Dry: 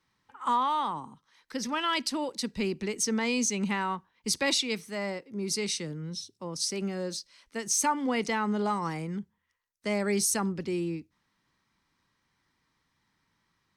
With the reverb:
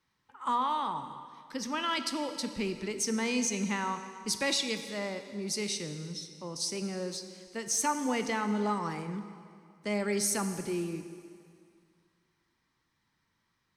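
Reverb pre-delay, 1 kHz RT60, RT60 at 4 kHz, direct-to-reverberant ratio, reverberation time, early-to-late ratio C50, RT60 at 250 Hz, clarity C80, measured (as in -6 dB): 7 ms, 2.2 s, 2.0 s, 8.0 dB, 2.2 s, 9.0 dB, 2.1 s, 10.0 dB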